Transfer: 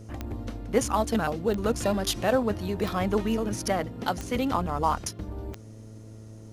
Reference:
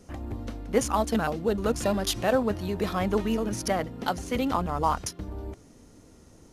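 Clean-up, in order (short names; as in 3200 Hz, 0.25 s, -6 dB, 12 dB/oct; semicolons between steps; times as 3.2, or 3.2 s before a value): de-click; de-hum 109.3 Hz, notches 6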